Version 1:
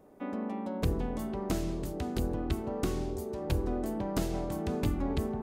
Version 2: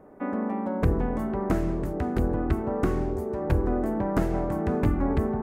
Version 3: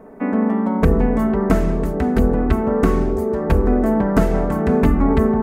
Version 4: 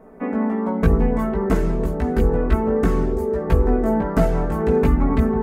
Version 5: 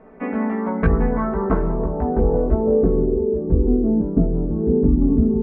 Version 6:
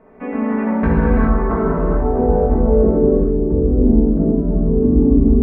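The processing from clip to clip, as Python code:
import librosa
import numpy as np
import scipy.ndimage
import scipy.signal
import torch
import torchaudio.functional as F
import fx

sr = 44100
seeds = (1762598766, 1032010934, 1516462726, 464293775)

y1 = fx.high_shelf_res(x, sr, hz=2500.0, db=-12.0, q=1.5)
y1 = y1 * librosa.db_to_amplitude(6.5)
y2 = y1 + 0.6 * np.pad(y1, (int(4.5 * sr / 1000.0), 0))[:len(y1)]
y2 = y2 * librosa.db_to_amplitude(8.0)
y3 = fx.chorus_voices(y2, sr, voices=4, hz=0.56, base_ms=17, depth_ms=1.3, mix_pct=45)
y4 = fx.filter_sweep_lowpass(y3, sr, from_hz=2700.0, to_hz=320.0, start_s=0.28, end_s=3.51, q=1.9)
y4 = y4 * librosa.db_to_amplitude(-1.0)
y5 = fx.rev_gated(y4, sr, seeds[0], gate_ms=450, shape='flat', drr_db=-5.0)
y5 = y5 * librosa.db_to_amplitude(-2.5)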